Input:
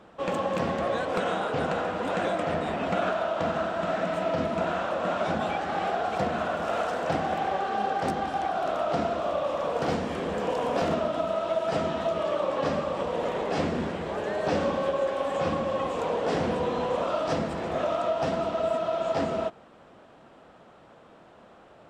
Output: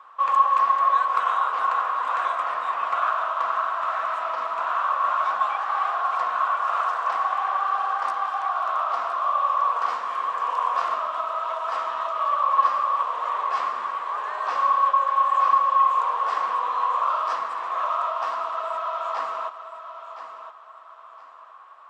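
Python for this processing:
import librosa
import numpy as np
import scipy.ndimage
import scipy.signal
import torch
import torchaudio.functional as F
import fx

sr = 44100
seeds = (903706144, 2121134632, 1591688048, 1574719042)

p1 = fx.highpass_res(x, sr, hz=1100.0, q=13.0)
p2 = fx.high_shelf(p1, sr, hz=7500.0, db=-5.5)
p3 = p2 + fx.echo_feedback(p2, sr, ms=1017, feedback_pct=27, wet_db=-11.0, dry=0)
y = p3 * 10.0 ** (-3.0 / 20.0)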